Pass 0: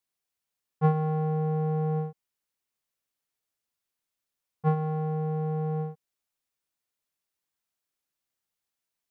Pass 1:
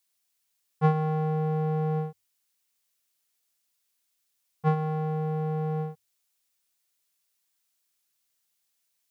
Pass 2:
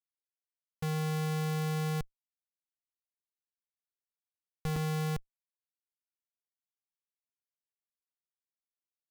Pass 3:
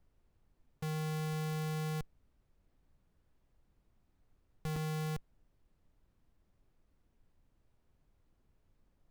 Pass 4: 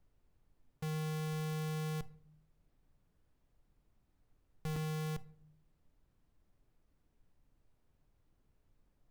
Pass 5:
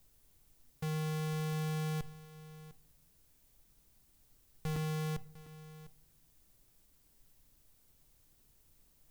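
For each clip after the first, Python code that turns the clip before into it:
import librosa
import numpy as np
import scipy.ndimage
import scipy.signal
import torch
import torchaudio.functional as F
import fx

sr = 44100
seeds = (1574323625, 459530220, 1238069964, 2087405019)

y1 = fx.high_shelf(x, sr, hz=2100.0, db=11.5)
y1 = fx.hum_notches(y1, sr, base_hz=50, count=2)
y2 = fx.echo_banded(y1, sr, ms=60, feedback_pct=79, hz=1500.0, wet_db=-4.5)
y2 = fx.env_lowpass(y2, sr, base_hz=390.0, full_db=-27.5)
y2 = fx.schmitt(y2, sr, flips_db=-24.0)
y3 = fx.dmg_noise_colour(y2, sr, seeds[0], colour='brown', level_db=-65.0)
y3 = y3 * librosa.db_to_amplitude(-4.5)
y4 = fx.room_shoebox(y3, sr, seeds[1], volume_m3=870.0, walls='furnished', distance_m=0.39)
y4 = y4 * librosa.db_to_amplitude(-1.5)
y5 = fx.dmg_noise_colour(y4, sr, seeds[2], colour='blue', level_db=-72.0)
y5 = y5 + 10.0 ** (-16.5 / 20.0) * np.pad(y5, (int(702 * sr / 1000.0), 0))[:len(y5)]
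y5 = y5 * librosa.db_to_amplitude(2.0)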